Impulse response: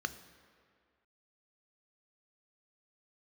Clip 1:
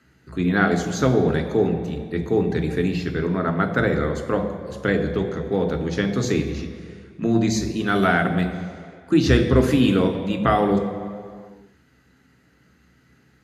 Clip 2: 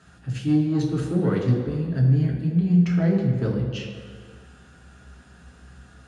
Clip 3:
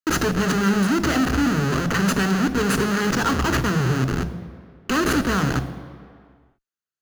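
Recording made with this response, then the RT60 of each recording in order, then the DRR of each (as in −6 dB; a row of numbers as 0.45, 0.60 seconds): 3; 2.0, 2.0, 2.0 seconds; 5.5, −1.0, 10.5 decibels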